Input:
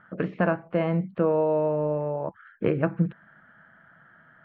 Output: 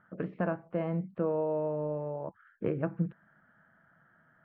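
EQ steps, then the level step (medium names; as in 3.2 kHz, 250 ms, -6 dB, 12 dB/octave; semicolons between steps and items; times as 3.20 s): treble shelf 2.2 kHz -10.5 dB; -7.0 dB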